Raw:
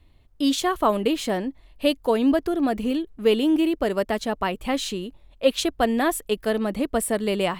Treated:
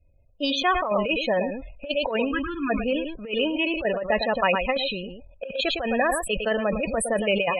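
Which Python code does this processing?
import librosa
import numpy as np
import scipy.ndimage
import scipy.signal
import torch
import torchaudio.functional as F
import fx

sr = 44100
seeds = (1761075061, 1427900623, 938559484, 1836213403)

p1 = fx.law_mismatch(x, sr, coded='A')
p2 = fx.spec_erase(p1, sr, start_s=2.32, length_s=0.38, low_hz=360.0, high_hz=980.0)
p3 = fx.dynamic_eq(p2, sr, hz=2100.0, q=0.78, threshold_db=-37.0, ratio=4.0, max_db=5)
p4 = fx.small_body(p3, sr, hz=(540.0, 2500.0), ring_ms=35, db=13)
p5 = p4 + fx.echo_single(p4, sr, ms=108, db=-12.0, dry=0)
p6 = fx.spec_topn(p5, sr, count=32)
p7 = fx.over_compress(p6, sr, threshold_db=-18.0, ratio=-0.5)
p8 = fx.peak_eq(p7, sr, hz=330.0, db=-10.0, octaves=1.5)
p9 = fx.env_lowpass(p8, sr, base_hz=1400.0, full_db=-19.5)
y = fx.sustainer(p9, sr, db_per_s=59.0)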